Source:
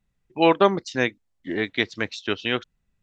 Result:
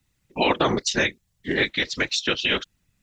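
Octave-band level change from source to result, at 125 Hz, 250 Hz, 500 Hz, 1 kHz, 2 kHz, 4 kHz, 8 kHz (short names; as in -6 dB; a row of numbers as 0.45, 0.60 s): +0.5 dB, -2.0 dB, -3.5 dB, -2.5 dB, +3.0 dB, +6.0 dB, n/a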